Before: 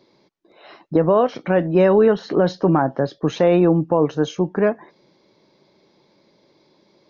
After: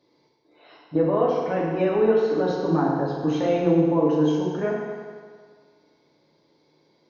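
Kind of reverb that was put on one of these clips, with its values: FDN reverb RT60 1.8 s, low-frequency decay 0.8×, high-frequency decay 0.85×, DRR -5.5 dB; gain -11.5 dB

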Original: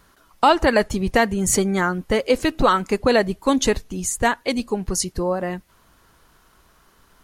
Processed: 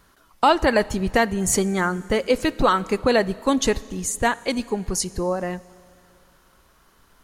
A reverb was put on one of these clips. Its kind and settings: Schroeder reverb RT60 2.5 s, combs from 28 ms, DRR 19.5 dB; gain -1.5 dB

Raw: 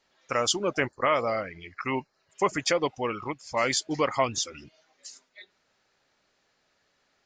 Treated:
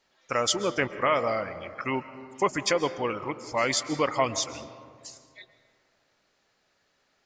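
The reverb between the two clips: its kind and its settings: digital reverb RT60 2.2 s, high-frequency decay 0.35×, pre-delay 95 ms, DRR 12.5 dB

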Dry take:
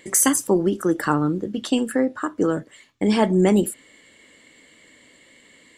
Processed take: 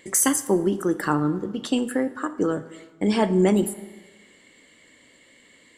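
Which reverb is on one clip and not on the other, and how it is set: plate-style reverb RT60 1.3 s, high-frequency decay 0.6×, DRR 12.5 dB; gain -2.5 dB

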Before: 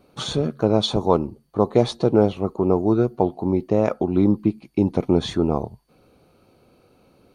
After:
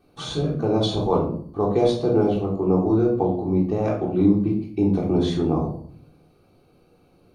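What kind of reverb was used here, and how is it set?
shoebox room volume 680 m³, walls furnished, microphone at 3.6 m; gain -7.5 dB

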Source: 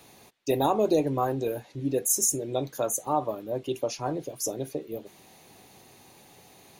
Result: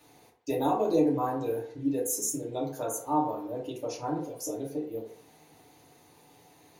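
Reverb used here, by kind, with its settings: FDN reverb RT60 0.58 s, low-frequency decay 0.8×, high-frequency decay 0.4×, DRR -4.5 dB; gain -9.5 dB

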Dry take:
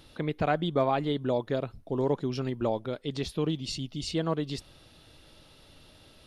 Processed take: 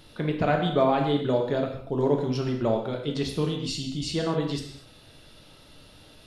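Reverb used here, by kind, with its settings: non-linear reverb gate 0.27 s falling, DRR 1.5 dB; gain +1.5 dB

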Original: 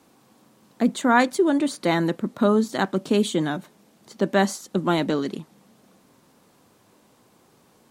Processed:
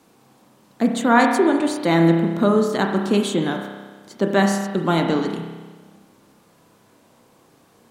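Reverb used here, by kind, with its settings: spring tank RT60 1.4 s, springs 30 ms, chirp 70 ms, DRR 3 dB; gain +1.5 dB

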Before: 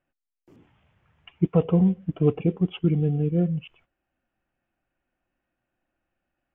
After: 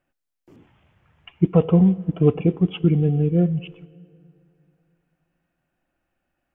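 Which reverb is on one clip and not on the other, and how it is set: plate-style reverb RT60 2.7 s, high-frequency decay 0.6×, DRR 19.5 dB; gain +4 dB

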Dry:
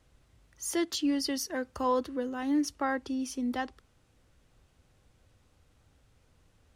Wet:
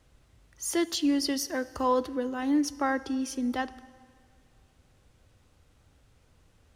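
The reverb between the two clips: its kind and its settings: plate-style reverb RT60 2 s, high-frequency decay 0.9×, DRR 17 dB; gain +2.5 dB

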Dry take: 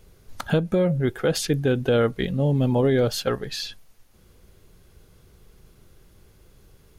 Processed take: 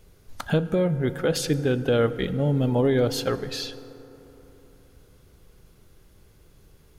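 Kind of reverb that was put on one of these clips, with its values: FDN reverb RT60 3.7 s, high-frequency decay 0.35×, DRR 12.5 dB; gain -1.5 dB

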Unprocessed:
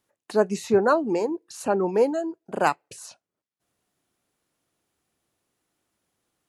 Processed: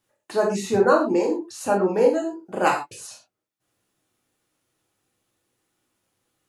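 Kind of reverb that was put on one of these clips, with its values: non-linear reverb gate 0.15 s falling, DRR -2.5 dB; gain -1.5 dB

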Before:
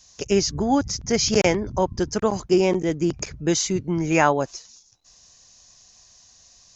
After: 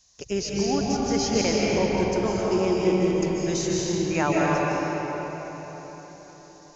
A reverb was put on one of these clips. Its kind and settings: digital reverb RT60 4.6 s, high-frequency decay 0.65×, pre-delay 0.11 s, DRR -5 dB; gain -8 dB

